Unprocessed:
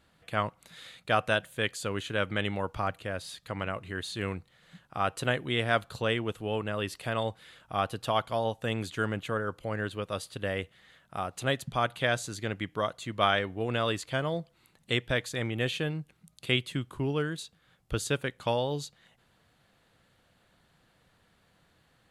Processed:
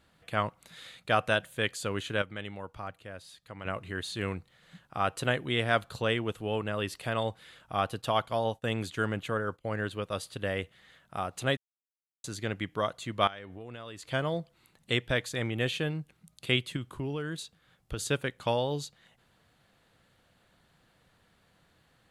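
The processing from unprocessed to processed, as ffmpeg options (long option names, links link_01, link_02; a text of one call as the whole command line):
ffmpeg -i in.wav -filter_complex "[0:a]asettb=1/sr,asplit=3[link_01][link_02][link_03];[link_01]atrim=end=7.804[link_04];[link_02]atrim=start=7.8:end=10.23,asetpts=PTS-STARTPTS,afade=type=in:duration=0.004:curve=qsin,afade=type=out:start_time=2.426:duration=0.004:curve=qsin,agate=range=-33dB:threshold=-44dB:ratio=3:release=100:detection=peak[link_05];[link_03]atrim=start=10.226[link_06];[link_04][link_05]acrossfade=duration=0.004:curve1=hsin:curve2=qsin[link_07];[link_07][link_06]acrossfade=duration=0.004:curve1=qsin:curve2=hsin,asettb=1/sr,asplit=3[link_08][link_09][link_10];[link_08]atrim=end=13.274[link_11];[link_09]atrim=start=13.27:end=14.11,asetpts=PTS-STARTPTS,afade=type=in:duration=0.004:curve=qsin,afade=type=out:start_time=0.836:duration=0.004:curve=qsin,acompressor=threshold=-41dB:ratio=5:attack=3.2:release=140:knee=1:detection=peak[link_12];[link_10]atrim=start=14.106[link_13];[link_11][link_12]acrossfade=duration=0.004:curve1=hsin:curve2=qsin[link_14];[link_14][link_13]acrossfade=duration=0.004:curve1=qsin:curve2=hsin,asettb=1/sr,asplit=3[link_15][link_16][link_17];[link_15]atrim=end=16.764[link_18];[link_16]atrim=start=16.76:end=17.99,asetpts=PTS-STARTPTS,afade=type=in:duration=0.004:curve=qsin,afade=type=out:start_time=1.226:duration=0.004:curve=qsin,acompressor=threshold=-30dB:ratio=6:attack=3.2:release=140:knee=1:detection=peak[link_19];[link_17]atrim=start=17.986[link_20];[link_18][link_19]acrossfade=duration=0.004:curve1=hsin:curve2=qsin[link_21];[link_21][link_20]acrossfade=duration=0.004:curve1=qsin:curve2=hsin,asplit=5[link_22][link_23][link_24][link_25][link_26];[link_22]atrim=end=2.222[link_27];[link_23]atrim=start=2.218:end=3.652,asetpts=PTS-STARTPTS,volume=-9dB[link_28];[link_24]atrim=start=3.648:end=11.57,asetpts=PTS-STARTPTS,afade=type=out:start_time=7.918:duration=0.004:curve=hsin[link_29];[link_25]atrim=start=11.57:end=12.24,asetpts=PTS-STARTPTS,volume=0[link_30];[link_26]atrim=start=12.24,asetpts=PTS-STARTPTS,afade=type=in:duration=0.004:curve=hsin[link_31];[link_27][link_28]acrossfade=duration=0.004:curve1=hsin:curve2=hsin[link_32];[link_29][link_30][link_31]concat=n=3:v=0:a=1[link_33];[link_32][link_33]acrossfade=duration=0.004:curve1=hsin:curve2=hsin" out.wav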